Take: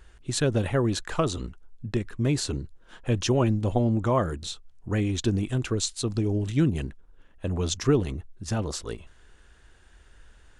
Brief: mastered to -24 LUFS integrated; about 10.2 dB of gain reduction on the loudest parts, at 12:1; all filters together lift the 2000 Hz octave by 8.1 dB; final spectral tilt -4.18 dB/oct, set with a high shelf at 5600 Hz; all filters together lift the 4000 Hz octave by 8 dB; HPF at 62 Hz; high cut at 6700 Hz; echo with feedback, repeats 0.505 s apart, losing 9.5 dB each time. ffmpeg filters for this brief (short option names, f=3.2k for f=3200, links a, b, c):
-af "highpass=62,lowpass=6.7k,equalizer=f=2k:t=o:g=8.5,equalizer=f=4k:t=o:g=4.5,highshelf=f=5.6k:g=8.5,acompressor=threshold=-27dB:ratio=12,aecho=1:1:505|1010|1515|2020:0.335|0.111|0.0365|0.012,volume=8.5dB"